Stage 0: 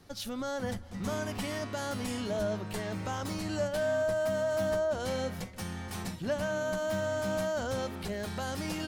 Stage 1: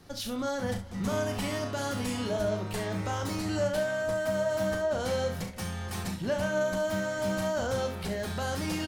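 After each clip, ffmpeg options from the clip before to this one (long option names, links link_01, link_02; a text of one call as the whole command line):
ffmpeg -i in.wav -filter_complex "[0:a]asplit=2[link_01][link_02];[link_02]asoftclip=type=tanh:threshold=-32dB,volume=-9dB[link_03];[link_01][link_03]amix=inputs=2:normalize=0,aecho=1:1:36|67:0.422|0.299" out.wav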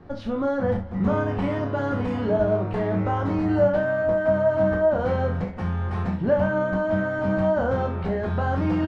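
ffmpeg -i in.wav -filter_complex "[0:a]lowpass=1300,asplit=2[link_01][link_02];[link_02]adelay=22,volume=-6.5dB[link_03];[link_01][link_03]amix=inputs=2:normalize=0,volume=8dB" out.wav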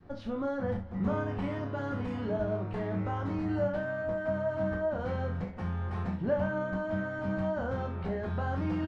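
ffmpeg -i in.wav -af "adynamicequalizer=threshold=0.0282:dfrequency=580:dqfactor=0.77:tfrequency=580:tqfactor=0.77:attack=5:release=100:ratio=0.375:range=2:mode=cutabove:tftype=bell,volume=-7.5dB" out.wav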